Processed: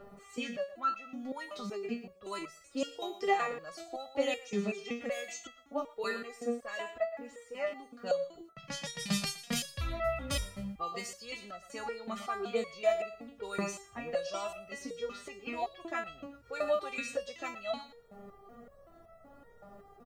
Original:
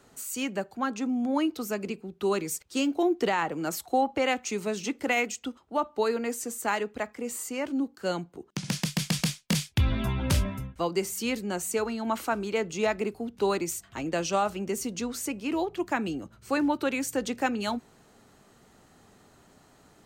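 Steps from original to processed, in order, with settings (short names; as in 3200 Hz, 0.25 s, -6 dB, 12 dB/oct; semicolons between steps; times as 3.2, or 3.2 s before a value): low-pass opened by the level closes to 890 Hz, open at -22 dBFS; comb 1.6 ms, depth 60%; in parallel at -1 dB: upward compressor, threshold -28 dBFS; on the sum: bit-crush 11-bit; on a send: thinning echo 0.117 s, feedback 23%, high-pass 210 Hz, level -13 dB; on the sum: stepped resonator 5.3 Hz 200–660 Hz; gain +3.5 dB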